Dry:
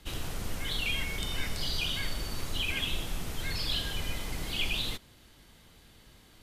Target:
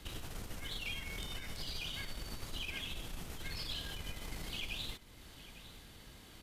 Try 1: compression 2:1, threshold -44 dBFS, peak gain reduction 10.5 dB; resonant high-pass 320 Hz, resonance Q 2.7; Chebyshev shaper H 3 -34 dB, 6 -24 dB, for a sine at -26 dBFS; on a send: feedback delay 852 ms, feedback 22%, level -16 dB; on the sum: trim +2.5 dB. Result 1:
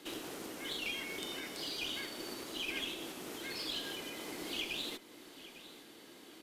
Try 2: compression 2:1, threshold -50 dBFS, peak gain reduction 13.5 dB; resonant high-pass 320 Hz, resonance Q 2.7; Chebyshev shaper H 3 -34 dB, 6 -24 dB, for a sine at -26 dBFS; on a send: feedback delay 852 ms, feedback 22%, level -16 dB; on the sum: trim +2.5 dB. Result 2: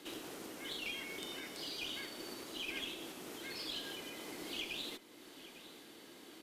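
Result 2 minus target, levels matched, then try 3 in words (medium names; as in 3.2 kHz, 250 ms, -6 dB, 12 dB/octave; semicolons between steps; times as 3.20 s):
250 Hz band +3.5 dB
compression 2:1, threshold -50 dBFS, peak gain reduction 13.5 dB; Chebyshev shaper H 3 -34 dB, 6 -24 dB, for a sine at -26 dBFS; on a send: feedback delay 852 ms, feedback 22%, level -16 dB; on the sum: trim +2.5 dB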